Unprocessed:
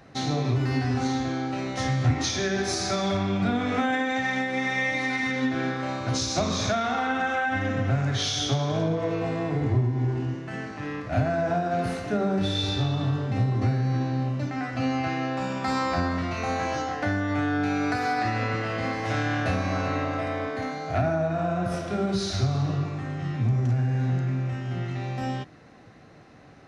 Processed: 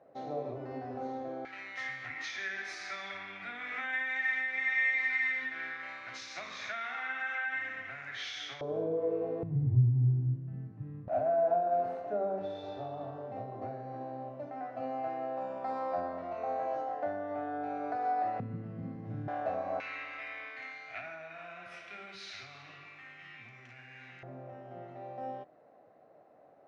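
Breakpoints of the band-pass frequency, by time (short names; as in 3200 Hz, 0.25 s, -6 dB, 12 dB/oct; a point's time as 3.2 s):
band-pass, Q 3.6
570 Hz
from 1.45 s 2000 Hz
from 8.61 s 460 Hz
from 9.43 s 130 Hz
from 11.08 s 640 Hz
from 18.4 s 170 Hz
from 19.28 s 670 Hz
from 19.8 s 2300 Hz
from 24.23 s 620 Hz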